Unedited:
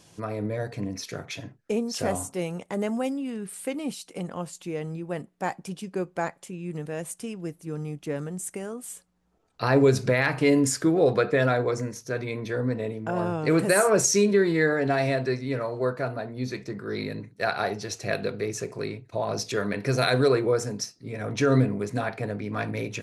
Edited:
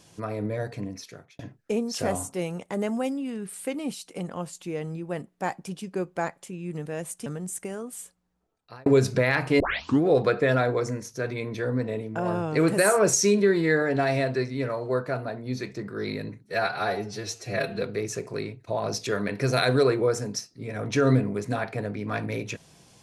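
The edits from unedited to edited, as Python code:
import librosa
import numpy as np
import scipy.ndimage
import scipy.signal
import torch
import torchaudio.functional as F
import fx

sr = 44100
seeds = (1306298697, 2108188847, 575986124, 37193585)

y = fx.edit(x, sr, fx.fade_out_span(start_s=0.67, length_s=0.72),
    fx.cut(start_s=7.26, length_s=0.91),
    fx.fade_out_span(start_s=8.85, length_s=0.92),
    fx.tape_start(start_s=10.51, length_s=0.42),
    fx.stretch_span(start_s=17.35, length_s=0.92, factor=1.5), tone=tone)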